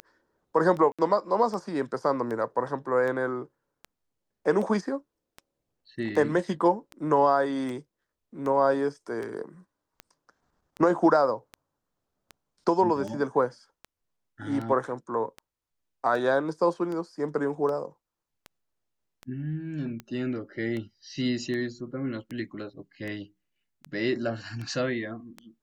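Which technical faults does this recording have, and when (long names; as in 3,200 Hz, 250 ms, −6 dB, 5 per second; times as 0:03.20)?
scratch tick 78 rpm −24 dBFS
0:00.92–0:00.99: drop-out 66 ms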